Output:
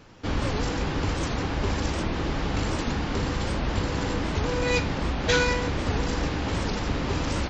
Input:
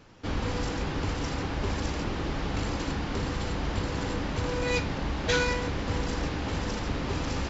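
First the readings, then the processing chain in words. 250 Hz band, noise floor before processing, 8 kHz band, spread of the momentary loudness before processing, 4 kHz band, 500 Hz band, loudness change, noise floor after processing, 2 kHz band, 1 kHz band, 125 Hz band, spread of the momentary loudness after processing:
+3.5 dB, −34 dBFS, can't be measured, 4 LU, +3.5 dB, +3.5 dB, +3.5 dB, −30 dBFS, +3.5 dB, +3.5 dB, +3.5 dB, 4 LU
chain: wow of a warped record 78 rpm, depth 250 cents
level +3.5 dB

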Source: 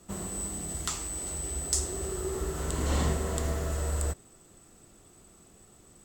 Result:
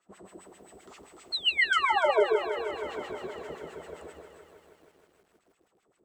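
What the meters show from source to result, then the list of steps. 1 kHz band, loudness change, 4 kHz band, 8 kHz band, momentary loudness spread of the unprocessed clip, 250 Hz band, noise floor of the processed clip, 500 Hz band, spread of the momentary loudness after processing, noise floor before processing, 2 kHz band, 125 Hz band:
+10.0 dB, +4.5 dB, +10.0 dB, −22.0 dB, 5 LU, −8.0 dB, −73 dBFS, +6.5 dB, 20 LU, −57 dBFS, +14.5 dB, −25.0 dB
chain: sound drawn into the spectrogram fall, 0:01.32–0:02.28, 340–4,400 Hz −16 dBFS
high-shelf EQ 8,500 Hz +6 dB
delay that swaps between a low-pass and a high-pass 146 ms, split 920 Hz, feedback 52%, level −2 dB
auto-filter band-pass sine 7.6 Hz 340–2,600 Hz
feedback echo at a low word length 158 ms, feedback 80%, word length 10 bits, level −11.5 dB
level −3.5 dB

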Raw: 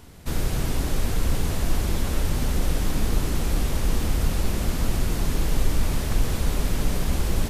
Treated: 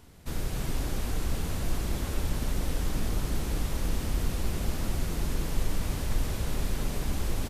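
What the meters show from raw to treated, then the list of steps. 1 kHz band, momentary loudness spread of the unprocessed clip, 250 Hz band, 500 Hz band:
−6.0 dB, 1 LU, −6.0 dB, −6.0 dB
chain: single-tap delay 289 ms −5.5 dB
level −7 dB

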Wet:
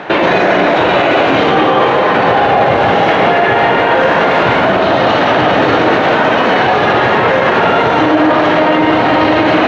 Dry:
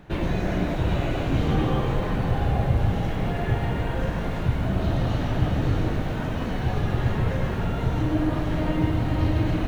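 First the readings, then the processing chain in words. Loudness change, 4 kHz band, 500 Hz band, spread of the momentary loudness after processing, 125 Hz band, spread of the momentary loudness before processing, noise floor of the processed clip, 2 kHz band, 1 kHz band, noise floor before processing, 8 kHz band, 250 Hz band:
+15.5 dB, +20.5 dB, +20.5 dB, 1 LU, 0.0 dB, 4 LU, −11 dBFS, +23.0 dB, +23.0 dB, −28 dBFS, can't be measured, +12.0 dB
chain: high-pass filter 520 Hz 12 dB per octave
high-frequency loss of the air 200 metres
boost into a limiter +31.5 dB
level −1 dB

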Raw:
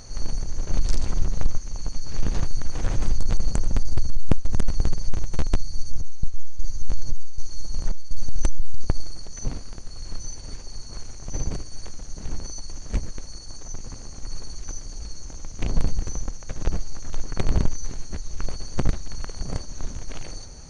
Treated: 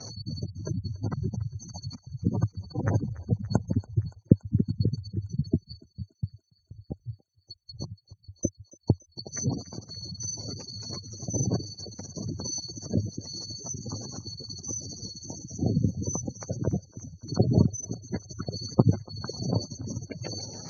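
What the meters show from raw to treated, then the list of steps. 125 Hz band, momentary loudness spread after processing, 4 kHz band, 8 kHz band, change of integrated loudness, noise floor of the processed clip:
+2.5 dB, 15 LU, +1.5 dB, can't be measured, +1.5 dB, −69 dBFS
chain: gate on every frequency bin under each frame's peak −30 dB strong
Chebyshev band-pass filter 100–5,900 Hz, order 4
noise gate −53 dBFS, range −17 dB
on a send: feedback echo with a high-pass in the loop 285 ms, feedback 77%, high-pass 790 Hz, level −18 dB
on the sum: level +8 dB

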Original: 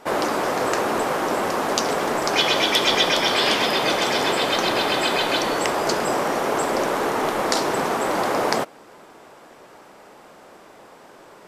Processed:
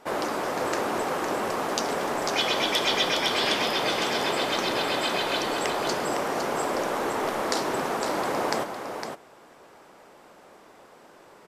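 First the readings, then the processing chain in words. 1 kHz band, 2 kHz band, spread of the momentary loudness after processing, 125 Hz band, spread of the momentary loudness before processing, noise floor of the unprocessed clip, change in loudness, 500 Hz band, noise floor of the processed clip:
−5.0 dB, −5.0 dB, 5 LU, −5.0 dB, 5 LU, −47 dBFS, −5.5 dB, −5.0 dB, −52 dBFS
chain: single-tap delay 508 ms −7 dB
level −6 dB

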